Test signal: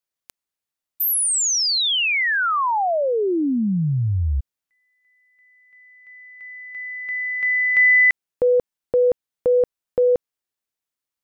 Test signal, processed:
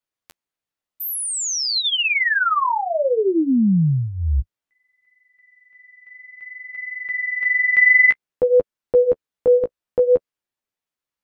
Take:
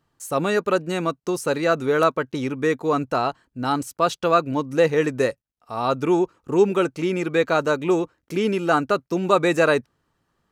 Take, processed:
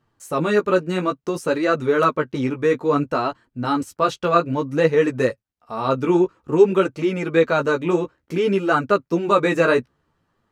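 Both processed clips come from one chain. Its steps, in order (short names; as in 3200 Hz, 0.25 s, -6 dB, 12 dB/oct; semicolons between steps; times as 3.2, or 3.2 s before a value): dynamic EQ 750 Hz, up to -7 dB, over -39 dBFS, Q 4.5; flange 0.57 Hz, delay 8 ms, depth 9.7 ms, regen -9%; high shelf 4600 Hz -8.5 dB; gain +5.5 dB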